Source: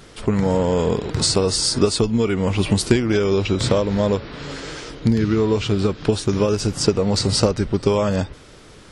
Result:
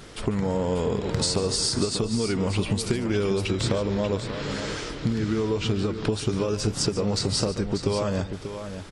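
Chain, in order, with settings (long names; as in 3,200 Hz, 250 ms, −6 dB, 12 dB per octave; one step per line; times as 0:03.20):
downward compressor, threshold −22 dBFS, peak gain reduction 12 dB
on a send: multi-tap delay 145/589 ms −14.5/−9.5 dB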